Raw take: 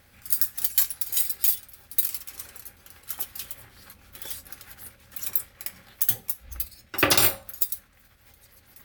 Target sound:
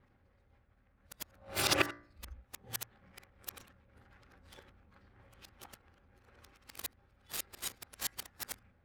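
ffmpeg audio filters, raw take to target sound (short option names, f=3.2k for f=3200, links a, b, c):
-af "areverse,bandreject=f=58.48:t=h:w=4,bandreject=f=116.96:t=h:w=4,bandreject=f=175.44:t=h:w=4,bandreject=f=233.92:t=h:w=4,bandreject=f=292.4:t=h:w=4,bandreject=f=350.88:t=h:w=4,bandreject=f=409.36:t=h:w=4,bandreject=f=467.84:t=h:w=4,bandreject=f=526.32:t=h:w=4,bandreject=f=584.8:t=h:w=4,bandreject=f=643.28:t=h:w=4,bandreject=f=701.76:t=h:w=4,bandreject=f=760.24:t=h:w=4,bandreject=f=818.72:t=h:w=4,bandreject=f=877.2:t=h:w=4,bandreject=f=935.68:t=h:w=4,bandreject=f=994.16:t=h:w=4,bandreject=f=1.05264k:t=h:w=4,bandreject=f=1.11112k:t=h:w=4,bandreject=f=1.1696k:t=h:w=4,bandreject=f=1.22808k:t=h:w=4,bandreject=f=1.28656k:t=h:w=4,bandreject=f=1.34504k:t=h:w=4,bandreject=f=1.40352k:t=h:w=4,bandreject=f=1.462k:t=h:w=4,bandreject=f=1.52048k:t=h:w=4,bandreject=f=1.57896k:t=h:w=4,bandreject=f=1.63744k:t=h:w=4,bandreject=f=1.69592k:t=h:w=4,bandreject=f=1.7544k:t=h:w=4,bandreject=f=1.81288k:t=h:w=4,bandreject=f=1.87136k:t=h:w=4,bandreject=f=1.92984k:t=h:w=4,bandreject=f=1.98832k:t=h:w=4,bandreject=f=2.0468k:t=h:w=4,bandreject=f=2.10528k:t=h:w=4,bandreject=f=2.16376k:t=h:w=4,adynamicsmooth=sensitivity=7:basefreq=1.3k,volume=-7.5dB"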